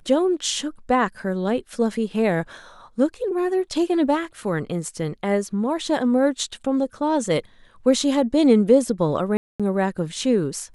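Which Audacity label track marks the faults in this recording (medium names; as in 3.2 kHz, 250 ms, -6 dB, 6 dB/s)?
9.370000	9.600000	dropout 226 ms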